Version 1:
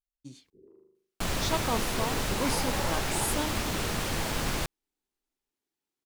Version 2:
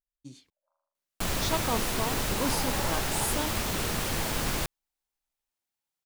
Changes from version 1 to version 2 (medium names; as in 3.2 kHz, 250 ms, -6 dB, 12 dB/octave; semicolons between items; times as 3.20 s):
first sound: add brick-wall FIR band-pass 550–1700 Hz; second sound: add treble shelf 11 kHz +8 dB